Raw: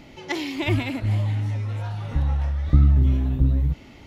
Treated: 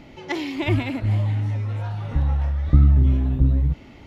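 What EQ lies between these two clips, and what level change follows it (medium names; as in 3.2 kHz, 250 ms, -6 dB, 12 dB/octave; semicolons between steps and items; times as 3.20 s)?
treble shelf 3.7 kHz -7.5 dB; +1.5 dB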